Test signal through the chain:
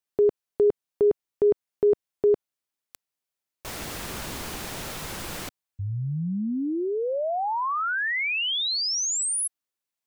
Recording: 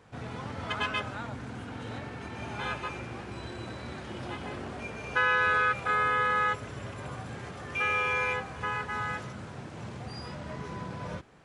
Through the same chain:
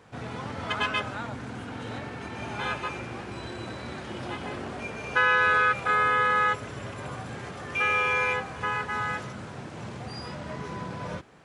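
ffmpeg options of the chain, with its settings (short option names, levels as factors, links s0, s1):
-af "lowshelf=f=77:g=-7.5,volume=1.5"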